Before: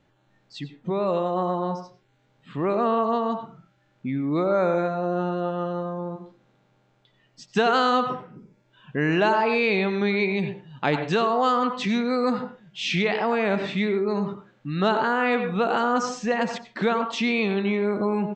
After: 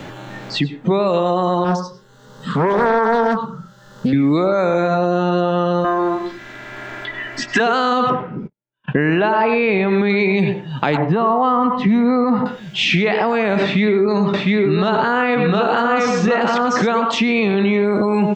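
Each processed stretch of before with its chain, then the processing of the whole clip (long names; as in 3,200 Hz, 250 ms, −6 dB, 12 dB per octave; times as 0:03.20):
0:01.64–0:04.13: phaser with its sweep stopped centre 470 Hz, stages 8 + highs frequency-modulated by the lows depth 0.42 ms
0:05.84–0:07.60: parametric band 1,800 Hz +14 dB + mains-hum notches 60/120/180/240/300/360/420 Hz + comb filter 3 ms, depth 83%
0:08.10–0:10.10: noise gate −50 dBFS, range −52 dB + low-pass filter 2,700 Hz
0:10.97–0:12.46: low-pass filter 1,100 Hz + comb filter 1 ms, depth 37%
0:13.63–0:16.87: low-pass filter 5,800 Hz + single-tap delay 705 ms −4 dB
whole clip: boost into a limiter +19.5 dB; multiband upward and downward compressor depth 70%; level −7.5 dB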